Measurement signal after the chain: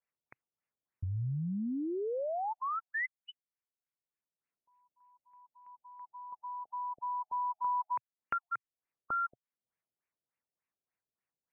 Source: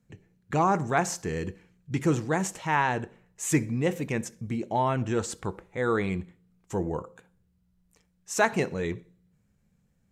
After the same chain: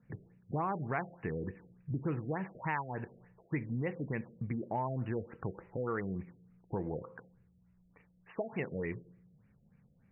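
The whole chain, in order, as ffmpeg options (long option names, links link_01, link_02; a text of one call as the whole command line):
ffmpeg -i in.wav -af "equalizer=frequency=125:width_type=o:width=1:gain=8,equalizer=frequency=250:width_type=o:width=1:gain=4,equalizer=frequency=500:width_type=o:width=1:gain=4,equalizer=frequency=1000:width_type=o:width=1:gain=5,equalizer=frequency=2000:width_type=o:width=1:gain=9,equalizer=frequency=4000:width_type=o:width=1:gain=3,equalizer=frequency=8000:width_type=o:width=1:gain=5,acompressor=threshold=-33dB:ratio=3,afftfilt=real='re*lt(b*sr/1024,700*pow(3000/700,0.5+0.5*sin(2*PI*3.4*pts/sr)))':imag='im*lt(b*sr/1024,700*pow(3000/700,0.5+0.5*sin(2*PI*3.4*pts/sr)))':win_size=1024:overlap=0.75,volume=-3.5dB" out.wav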